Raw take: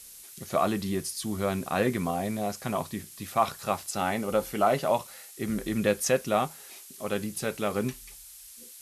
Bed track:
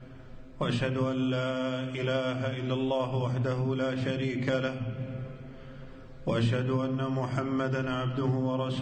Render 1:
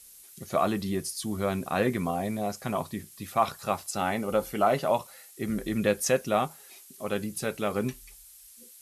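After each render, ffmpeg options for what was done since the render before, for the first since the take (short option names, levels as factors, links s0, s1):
-af "afftdn=nr=6:nf=-48"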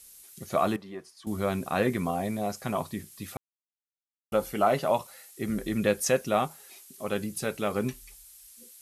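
-filter_complex "[0:a]asettb=1/sr,asplit=3[s0][s1][s2];[s0]atrim=end=0.764[s3];[s1]atrim=start=0.76:end=1.27,asetpts=PTS-STARTPTS,afade=t=in:d=0.004:c=qsin,afade=t=out:st=0.506:d=0.004:c=qsin,bandpass=f=930:t=q:w=1.1[s4];[s2]atrim=start=1.266[s5];[s3][s4]acrossfade=d=0.004:c1=hsin:c2=qsin[s6];[s6][s5]acrossfade=d=0.004:c1=qsin:c2=hsin,asplit=3[s7][s8][s9];[s7]atrim=end=3.37,asetpts=PTS-STARTPTS,afade=t=out:st=3.366:d=0.004:c=hsin[s10];[s8]atrim=start=3.37:end=4.32,asetpts=PTS-STARTPTS,volume=0[s11];[s9]atrim=start=4.32,asetpts=PTS-STARTPTS,afade=t=in:d=0.004:c=hsin[s12];[s10][s11][s12]concat=n=3:v=0:a=1"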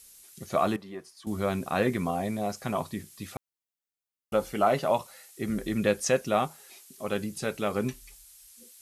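-filter_complex "[0:a]acrossover=split=8700[s0][s1];[s1]acompressor=threshold=0.00141:ratio=4:attack=1:release=60[s2];[s0][s2]amix=inputs=2:normalize=0,highshelf=f=9500:g=4"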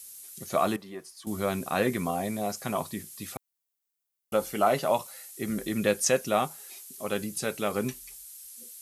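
-af "highpass=f=110:p=1,highshelf=f=7200:g=10.5"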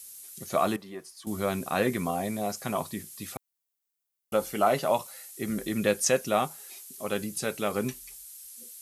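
-af anull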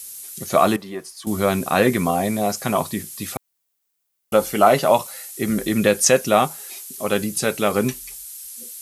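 -af "volume=2.99,alimiter=limit=0.794:level=0:latency=1"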